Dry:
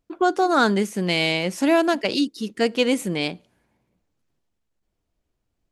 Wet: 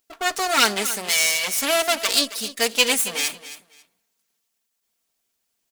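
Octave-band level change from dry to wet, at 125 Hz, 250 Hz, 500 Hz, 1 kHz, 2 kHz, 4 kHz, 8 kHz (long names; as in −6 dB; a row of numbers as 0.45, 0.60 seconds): below −15 dB, −11.5 dB, −4.5 dB, −2.0 dB, +3.0 dB, +6.5 dB, +15.5 dB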